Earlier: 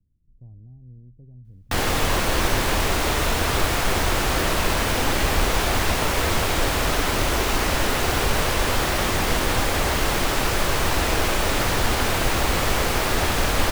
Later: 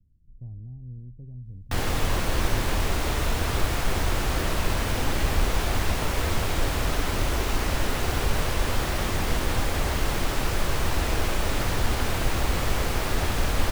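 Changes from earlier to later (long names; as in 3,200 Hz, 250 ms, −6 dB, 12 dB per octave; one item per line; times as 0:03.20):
background −7.0 dB
master: add low-shelf EQ 200 Hz +7 dB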